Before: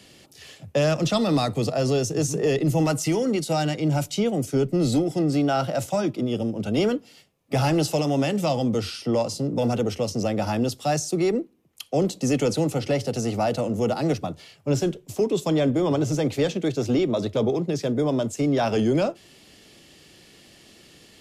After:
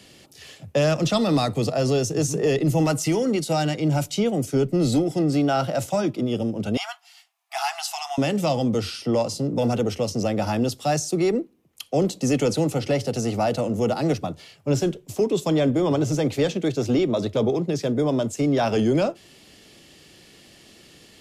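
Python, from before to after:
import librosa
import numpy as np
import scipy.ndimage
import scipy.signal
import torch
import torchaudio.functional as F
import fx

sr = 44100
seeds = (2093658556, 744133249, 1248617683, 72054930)

y = fx.brickwall_highpass(x, sr, low_hz=660.0, at=(6.77, 8.18))
y = y * 10.0 ** (1.0 / 20.0)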